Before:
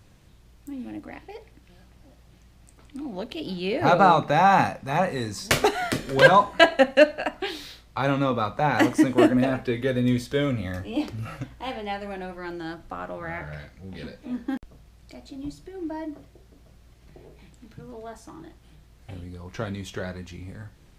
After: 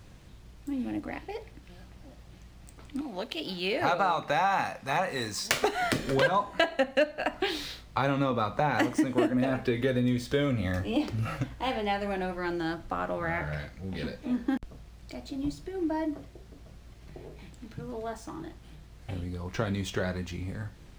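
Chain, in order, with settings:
running median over 3 samples
0:03.01–0:05.63: low-shelf EQ 480 Hz −11 dB
downward compressor 4 to 1, threshold −27 dBFS, peak gain reduction 16 dB
mains hum 50 Hz, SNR 31 dB
level +3 dB

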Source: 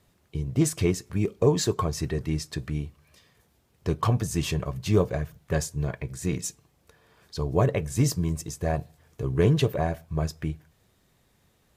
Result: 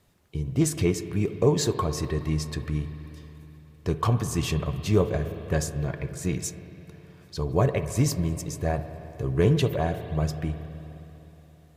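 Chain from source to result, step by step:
spring reverb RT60 3.5 s, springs 52/59 ms, chirp 20 ms, DRR 9.5 dB

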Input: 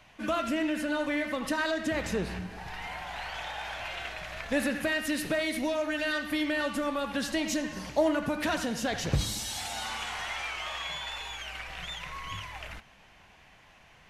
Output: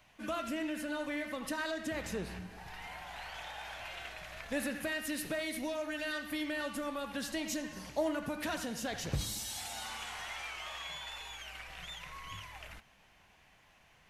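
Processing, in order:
high-shelf EQ 9,600 Hz +10 dB
level −7.5 dB

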